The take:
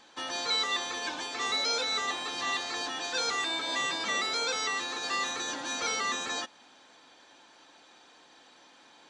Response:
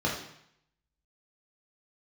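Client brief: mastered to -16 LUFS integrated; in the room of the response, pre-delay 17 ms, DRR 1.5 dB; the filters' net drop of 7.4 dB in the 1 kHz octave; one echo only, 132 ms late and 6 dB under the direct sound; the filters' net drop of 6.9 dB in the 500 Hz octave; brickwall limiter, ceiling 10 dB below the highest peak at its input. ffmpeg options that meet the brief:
-filter_complex "[0:a]equalizer=f=500:t=o:g=-6,equalizer=f=1000:t=o:g=-8.5,alimiter=level_in=2:limit=0.0631:level=0:latency=1,volume=0.501,aecho=1:1:132:0.501,asplit=2[s0][s1];[1:a]atrim=start_sample=2205,adelay=17[s2];[s1][s2]afir=irnorm=-1:irlink=0,volume=0.251[s3];[s0][s3]amix=inputs=2:normalize=0,volume=8.41"

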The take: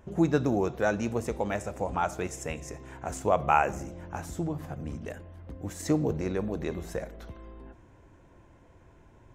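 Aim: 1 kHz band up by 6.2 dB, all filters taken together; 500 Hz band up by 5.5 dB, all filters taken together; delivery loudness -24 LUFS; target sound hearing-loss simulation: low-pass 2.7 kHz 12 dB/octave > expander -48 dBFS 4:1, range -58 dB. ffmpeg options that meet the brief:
-af "lowpass=2700,equalizer=f=500:t=o:g=5,equalizer=f=1000:t=o:g=6.5,agate=range=0.00126:threshold=0.00398:ratio=4,volume=1.26"

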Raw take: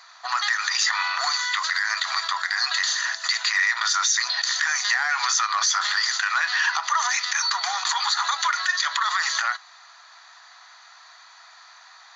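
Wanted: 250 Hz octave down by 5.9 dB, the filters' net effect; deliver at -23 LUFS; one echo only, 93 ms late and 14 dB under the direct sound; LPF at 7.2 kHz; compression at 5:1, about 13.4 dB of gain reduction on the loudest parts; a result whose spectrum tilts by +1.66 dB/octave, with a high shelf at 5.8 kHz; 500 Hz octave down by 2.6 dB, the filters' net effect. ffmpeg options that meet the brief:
-af "lowpass=7200,equalizer=f=250:t=o:g=-7.5,equalizer=f=500:t=o:g=-3.5,highshelf=f=5800:g=6.5,acompressor=threshold=0.0224:ratio=5,aecho=1:1:93:0.2,volume=3.16"

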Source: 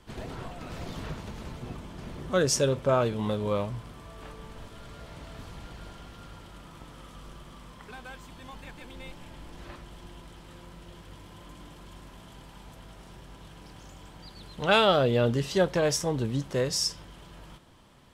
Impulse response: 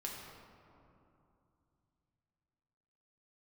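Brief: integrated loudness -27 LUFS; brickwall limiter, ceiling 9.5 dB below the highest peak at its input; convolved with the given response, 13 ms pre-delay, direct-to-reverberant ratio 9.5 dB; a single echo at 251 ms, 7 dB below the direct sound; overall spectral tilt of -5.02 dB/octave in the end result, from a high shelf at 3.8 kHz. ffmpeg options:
-filter_complex "[0:a]highshelf=f=3800:g=-5,alimiter=limit=0.106:level=0:latency=1,aecho=1:1:251:0.447,asplit=2[s0][s1];[1:a]atrim=start_sample=2205,adelay=13[s2];[s1][s2]afir=irnorm=-1:irlink=0,volume=0.355[s3];[s0][s3]amix=inputs=2:normalize=0,volume=1.68"

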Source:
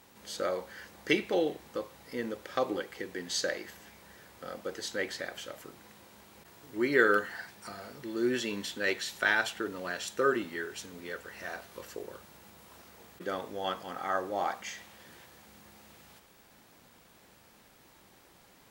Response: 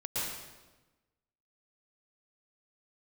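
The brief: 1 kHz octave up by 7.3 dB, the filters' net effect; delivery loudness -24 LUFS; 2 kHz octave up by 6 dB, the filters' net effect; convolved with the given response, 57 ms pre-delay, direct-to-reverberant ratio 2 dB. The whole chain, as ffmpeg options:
-filter_complex "[0:a]equalizer=f=1000:t=o:g=9,equalizer=f=2000:t=o:g=4,asplit=2[s0][s1];[1:a]atrim=start_sample=2205,adelay=57[s2];[s1][s2]afir=irnorm=-1:irlink=0,volume=0.422[s3];[s0][s3]amix=inputs=2:normalize=0,volume=1.41"

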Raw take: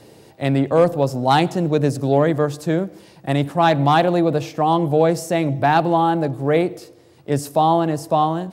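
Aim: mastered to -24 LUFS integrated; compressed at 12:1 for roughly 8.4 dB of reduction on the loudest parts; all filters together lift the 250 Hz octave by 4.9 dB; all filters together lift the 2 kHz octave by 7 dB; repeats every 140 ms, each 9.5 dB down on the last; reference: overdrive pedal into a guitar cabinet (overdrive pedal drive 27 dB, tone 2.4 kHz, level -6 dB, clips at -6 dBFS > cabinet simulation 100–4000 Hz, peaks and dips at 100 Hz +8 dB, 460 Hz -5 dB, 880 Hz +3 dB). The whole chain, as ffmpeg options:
-filter_complex "[0:a]equalizer=f=250:t=o:g=7.5,equalizer=f=2000:t=o:g=9,acompressor=threshold=0.158:ratio=12,aecho=1:1:140|280|420|560:0.335|0.111|0.0365|0.012,asplit=2[s0][s1];[s1]highpass=f=720:p=1,volume=22.4,asoftclip=type=tanh:threshold=0.501[s2];[s0][s2]amix=inputs=2:normalize=0,lowpass=f=2400:p=1,volume=0.501,highpass=100,equalizer=f=100:t=q:w=4:g=8,equalizer=f=460:t=q:w=4:g=-5,equalizer=f=880:t=q:w=4:g=3,lowpass=f=4000:w=0.5412,lowpass=f=4000:w=1.3066,volume=0.355"

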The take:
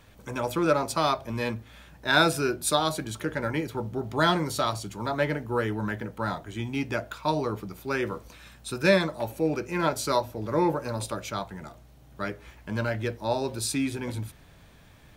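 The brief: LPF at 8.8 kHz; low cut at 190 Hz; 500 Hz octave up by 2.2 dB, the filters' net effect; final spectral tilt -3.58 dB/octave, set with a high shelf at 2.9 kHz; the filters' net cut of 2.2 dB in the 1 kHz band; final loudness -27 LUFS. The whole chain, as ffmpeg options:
-af "highpass=190,lowpass=8800,equalizer=f=500:t=o:g=4,equalizer=f=1000:t=o:g=-3.5,highshelf=f=2900:g=-3.5,volume=1.19"

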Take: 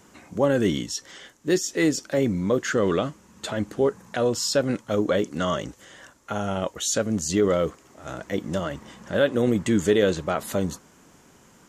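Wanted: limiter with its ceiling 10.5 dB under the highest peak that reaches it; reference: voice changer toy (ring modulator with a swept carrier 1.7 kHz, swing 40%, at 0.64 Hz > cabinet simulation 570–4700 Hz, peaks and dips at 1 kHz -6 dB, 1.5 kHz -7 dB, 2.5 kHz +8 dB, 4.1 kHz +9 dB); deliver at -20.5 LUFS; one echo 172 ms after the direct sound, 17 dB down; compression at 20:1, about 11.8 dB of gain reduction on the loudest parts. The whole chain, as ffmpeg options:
-af "acompressor=threshold=0.0447:ratio=20,alimiter=limit=0.0708:level=0:latency=1,aecho=1:1:172:0.141,aeval=exprs='val(0)*sin(2*PI*1700*n/s+1700*0.4/0.64*sin(2*PI*0.64*n/s))':c=same,highpass=570,equalizer=f=1000:t=q:w=4:g=-6,equalizer=f=1500:t=q:w=4:g=-7,equalizer=f=2500:t=q:w=4:g=8,equalizer=f=4100:t=q:w=4:g=9,lowpass=f=4700:w=0.5412,lowpass=f=4700:w=1.3066,volume=4.73"

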